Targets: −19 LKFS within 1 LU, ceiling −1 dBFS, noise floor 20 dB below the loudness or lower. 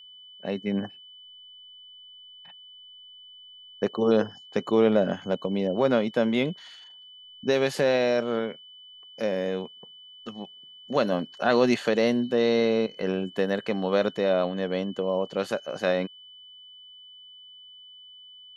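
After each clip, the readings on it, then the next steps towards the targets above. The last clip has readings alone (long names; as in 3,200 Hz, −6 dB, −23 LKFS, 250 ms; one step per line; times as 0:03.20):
interfering tone 3,000 Hz; level of the tone −46 dBFS; integrated loudness −26.0 LKFS; sample peak −8.5 dBFS; target loudness −19.0 LKFS
→ notch filter 3,000 Hz, Q 30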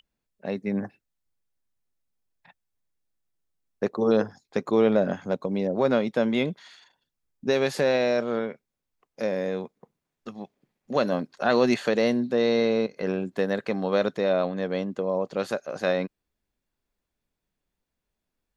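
interfering tone none found; integrated loudness −26.0 LKFS; sample peak −8.5 dBFS; target loudness −19.0 LKFS
→ level +7 dB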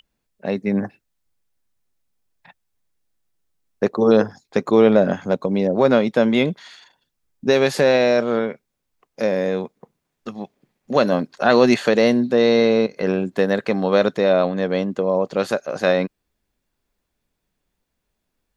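integrated loudness −19.0 LKFS; sample peak −1.5 dBFS; background noise floor −77 dBFS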